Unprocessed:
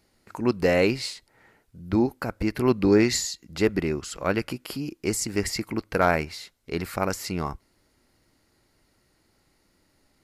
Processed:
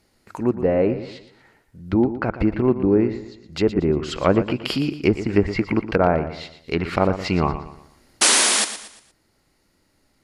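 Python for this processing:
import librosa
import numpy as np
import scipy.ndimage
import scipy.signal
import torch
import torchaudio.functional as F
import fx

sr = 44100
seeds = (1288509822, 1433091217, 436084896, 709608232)

p1 = fx.env_lowpass_down(x, sr, base_hz=840.0, full_db=-22.0)
p2 = fx.dynamic_eq(p1, sr, hz=3000.0, q=1.4, threshold_db=-52.0, ratio=4.0, max_db=6)
p3 = fx.spec_paint(p2, sr, seeds[0], shape='noise', start_s=8.21, length_s=0.44, low_hz=200.0, high_hz=11000.0, level_db=-21.0)
p4 = fx.rider(p3, sr, range_db=4, speed_s=0.5)
p5 = p4 + fx.echo_feedback(p4, sr, ms=117, feedback_pct=38, wet_db=-12, dry=0)
y = p5 * 10.0 ** (5.0 / 20.0)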